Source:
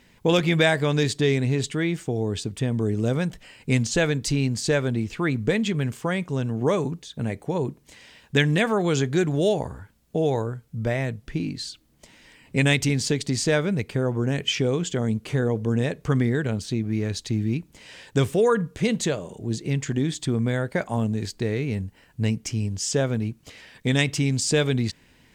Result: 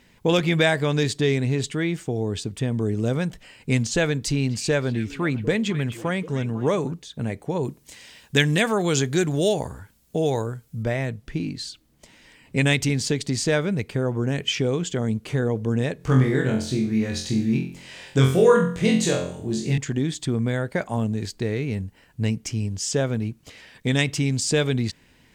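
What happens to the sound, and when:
4.15–6.93 s: repeats whose band climbs or falls 250 ms, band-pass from 2.5 kHz, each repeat -1.4 oct, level -9 dB
7.63–10.83 s: treble shelf 4.2 kHz +9.5 dB
15.97–19.78 s: flutter echo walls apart 3.9 m, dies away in 0.48 s

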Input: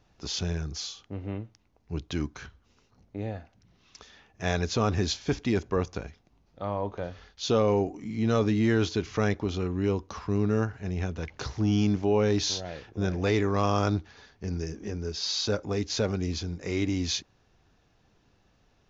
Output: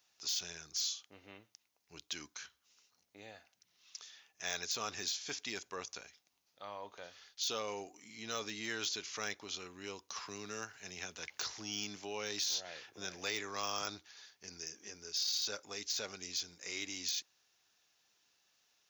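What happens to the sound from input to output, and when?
10.16–13.82 s: three bands compressed up and down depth 40%
whole clip: de-esser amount 85%; differentiator; trim +5.5 dB

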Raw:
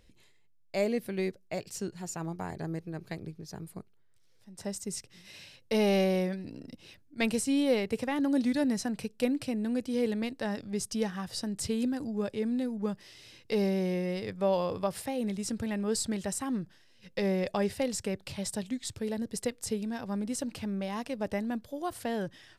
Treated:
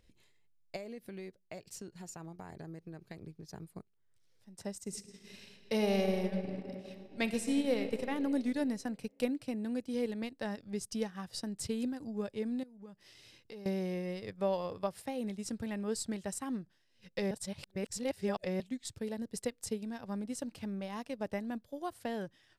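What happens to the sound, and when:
0.76–3.48 s: compression 4:1, threshold -37 dBFS
4.81–7.83 s: reverb throw, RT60 3 s, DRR 5.5 dB
12.63–13.66 s: compression 3:1, threshold -45 dBFS
17.31–18.60 s: reverse
whole clip: transient shaper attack +2 dB, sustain -7 dB; trim -5.5 dB

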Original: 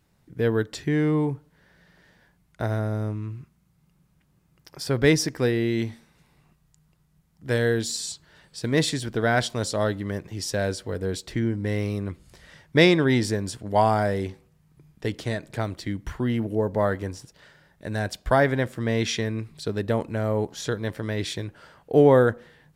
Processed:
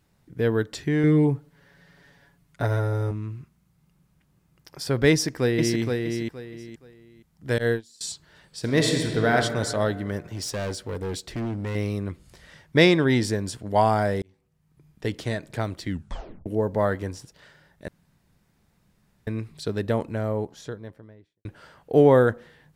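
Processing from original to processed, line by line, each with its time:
1.03–3.11 s: comb 7.1 ms, depth 82%
5.11–5.81 s: echo throw 470 ms, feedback 25%, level -4 dB
7.58–8.01 s: gate -23 dBFS, range -24 dB
8.59–9.33 s: reverb throw, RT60 2.2 s, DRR 2 dB
10.33–11.75 s: hard clipper -26.5 dBFS
14.22–15.06 s: fade in
15.89 s: tape stop 0.57 s
17.88–19.27 s: room tone
19.84–21.45 s: studio fade out

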